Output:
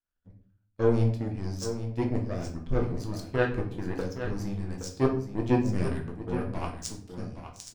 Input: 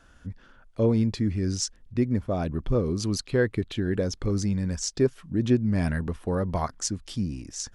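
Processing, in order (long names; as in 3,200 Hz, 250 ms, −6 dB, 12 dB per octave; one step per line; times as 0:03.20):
power curve on the samples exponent 2
single-tap delay 819 ms −10 dB
rectangular room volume 65 cubic metres, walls mixed, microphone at 0.64 metres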